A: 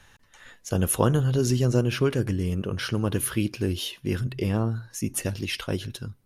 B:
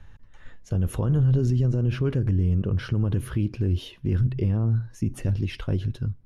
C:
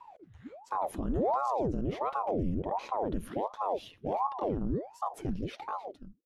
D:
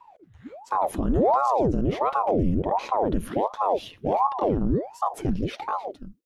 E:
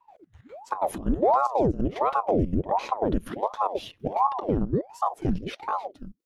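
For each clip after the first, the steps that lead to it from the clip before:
RIAA curve playback; peak limiter -11.5 dBFS, peak gain reduction 11 dB; trim -3.5 dB
fade out at the end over 0.76 s; ring modulator with a swept carrier 530 Hz, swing 85%, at 1.4 Hz; trim -6 dB
level rider gain up to 8.5 dB
trance gate ".xx.x.xxx" 184 bpm -12 dB

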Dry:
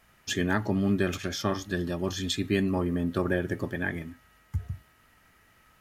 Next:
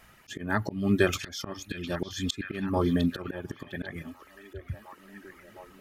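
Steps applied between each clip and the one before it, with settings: reverb removal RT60 0.78 s; slow attack 311 ms; repeats whose band climbs or falls 707 ms, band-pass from 3.1 kHz, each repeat -0.7 oct, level -7.5 dB; trim +6 dB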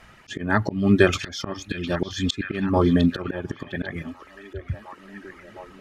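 distance through air 64 m; trim +7 dB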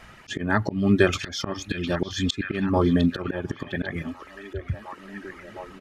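resampled via 32 kHz; in parallel at 0 dB: compression, threshold -29 dBFS, peak gain reduction 17.5 dB; on the sum: trim -3.5 dB

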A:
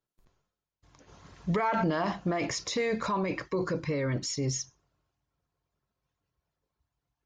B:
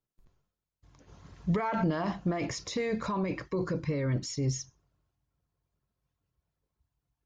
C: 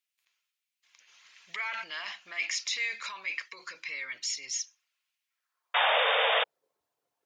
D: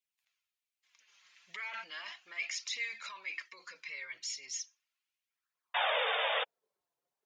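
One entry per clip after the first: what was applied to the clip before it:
bass shelf 260 Hz +8.5 dB; trim -4.5 dB
painted sound noise, 5.74–6.44 s, 440–3700 Hz -32 dBFS; high-pass sweep 2.4 kHz -> 490 Hz, 5.26–6.04 s; trim +5 dB
flange 0.36 Hz, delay 0.3 ms, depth 5.7 ms, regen -21%; trim -3 dB

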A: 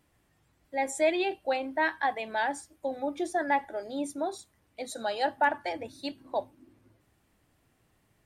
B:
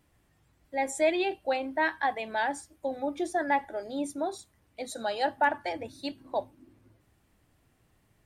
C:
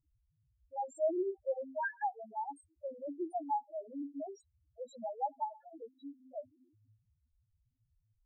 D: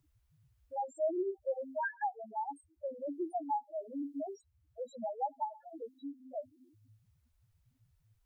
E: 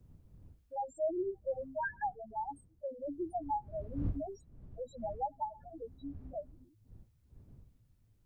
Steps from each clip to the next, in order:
bass shelf 120 Hz +5 dB
loudest bins only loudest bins 1; Shepard-style flanger rising 0.93 Hz; trim +3 dB
three bands compressed up and down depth 40%; trim +1 dB
wind noise 100 Hz -48 dBFS; trim -1 dB

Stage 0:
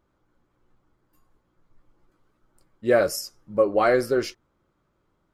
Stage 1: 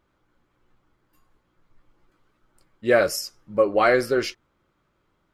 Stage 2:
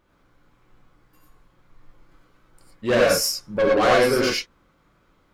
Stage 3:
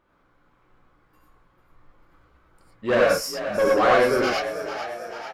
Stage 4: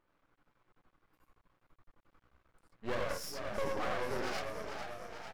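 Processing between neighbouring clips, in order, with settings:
peaking EQ 2.6 kHz +6.5 dB 1.9 oct
saturation -21 dBFS, distortion -8 dB; gated-style reverb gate 130 ms rising, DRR -2.5 dB; trim +3.5 dB
FFT filter 100 Hz 0 dB, 1.2 kHz +7 dB, 6.2 kHz -3 dB; frequency-shifting echo 444 ms, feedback 60%, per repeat +52 Hz, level -11 dB; trim -5.5 dB
compression 10:1, threshold -20 dBFS, peak gain reduction 8 dB; half-wave rectifier; trim -8 dB

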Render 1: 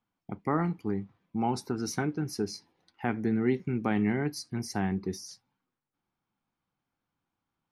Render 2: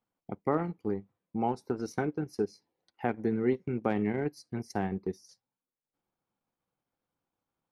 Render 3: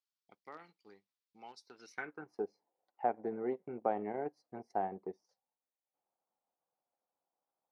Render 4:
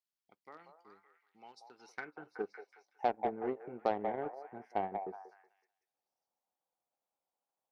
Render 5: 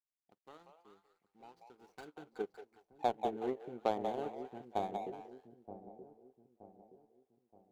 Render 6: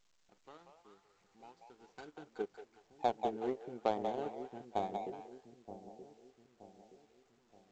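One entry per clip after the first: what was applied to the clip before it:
peaking EQ 520 Hz +9 dB 0.96 oct; transient shaper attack +2 dB, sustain -11 dB; trim -4.5 dB
band-pass sweep 4.6 kHz -> 710 Hz, 1.66–2.41 s; trim +2.5 dB
repeats whose band climbs or falls 186 ms, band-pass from 720 Hz, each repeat 0.7 oct, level -3.5 dB; Chebyshev shaper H 7 -25 dB, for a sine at -18.5 dBFS; trim +1 dB
median filter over 25 samples; feedback echo behind a low-pass 924 ms, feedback 41%, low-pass 430 Hz, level -8 dB
A-law 128 kbps 16 kHz

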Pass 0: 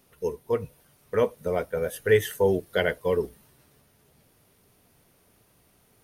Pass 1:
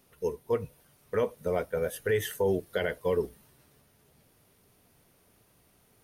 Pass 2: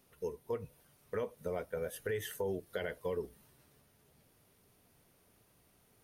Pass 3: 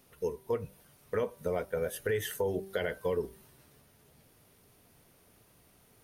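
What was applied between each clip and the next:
peak limiter -16 dBFS, peak gain reduction 7 dB; trim -2 dB
compression 2:1, threshold -33 dBFS, peak gain reduction 6.5 dB; trim -4 dB
de-hum 193.3 Hz, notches 8; trim +5.5 dB

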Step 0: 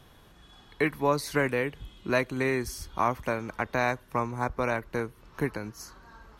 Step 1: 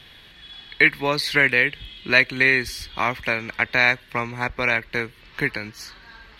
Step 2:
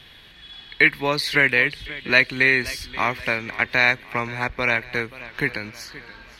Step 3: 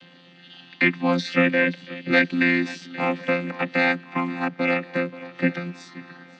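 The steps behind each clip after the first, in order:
high-order bell 2.8 kHz +15 dB; trim +1.5 dB
modulated delay 528 ms, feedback 45%, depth 78 cents, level -17.5 dB
vocoder on a held chord bare fifth, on F3

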